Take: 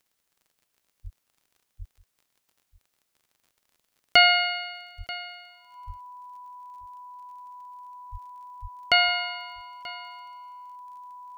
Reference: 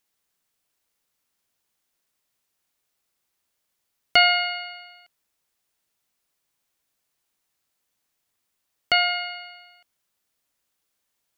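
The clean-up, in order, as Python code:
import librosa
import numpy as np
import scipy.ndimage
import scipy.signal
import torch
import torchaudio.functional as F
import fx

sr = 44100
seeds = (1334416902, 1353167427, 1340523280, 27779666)

y = fx.fix_declick_ar(x, sr, threshold=6.5)
y = fx.notch(y, sr, hz=990.0, q=30.0)
y = fx.fix_deplosive(y, sr, at_s=(1.03, 1.78, 4.97, 5.86, 8.11, 8.61))
y = fx.fix_echo_inverse(y, sr, delay_ms=935, level_db=-19.0)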